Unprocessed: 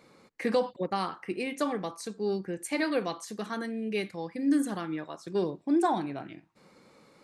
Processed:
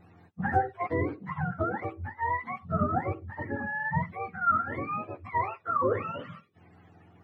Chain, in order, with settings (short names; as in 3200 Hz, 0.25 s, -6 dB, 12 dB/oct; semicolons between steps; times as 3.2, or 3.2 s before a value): spectrum mirrored in octaves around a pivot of 620 Hz; gain +2.5 dB